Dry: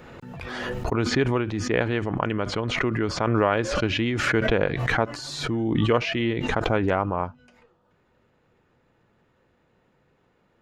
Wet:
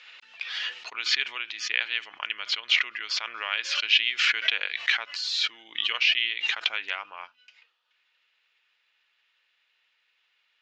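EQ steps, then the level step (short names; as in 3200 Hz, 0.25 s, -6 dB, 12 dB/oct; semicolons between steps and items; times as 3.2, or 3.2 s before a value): resonant high-pass 2800 Hz, resonance Q 1.9; LPF 5600 Hz 24 dB/oct; +4.0 dB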